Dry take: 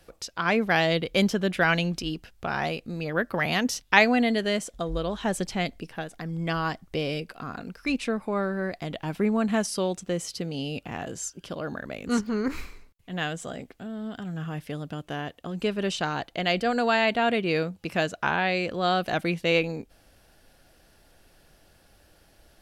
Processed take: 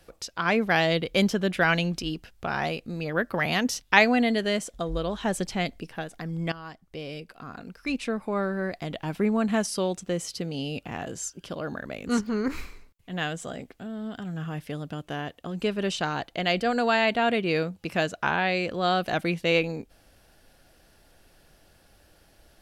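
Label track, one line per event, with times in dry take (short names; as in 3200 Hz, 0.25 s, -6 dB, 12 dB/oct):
6.520000	8.430000	fade in, from -15.5 dB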